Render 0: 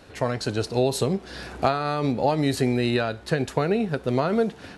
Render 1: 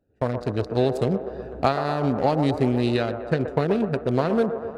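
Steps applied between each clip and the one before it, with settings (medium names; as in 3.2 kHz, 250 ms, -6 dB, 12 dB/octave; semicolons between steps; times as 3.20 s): local Wiener filter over 41 samples; feedback echo behind a band-pass 124 ms, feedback 71%, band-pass 720 Hz, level -7.5 dB; gate with hold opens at -27 dBFS; trim +1.5 dB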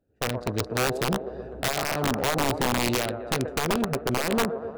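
integer overflow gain 14.5 dB; trim -2.5 dB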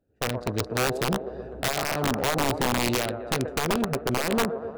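no audible change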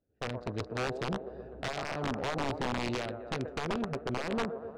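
distance through air 110 m; trim -7.5 dB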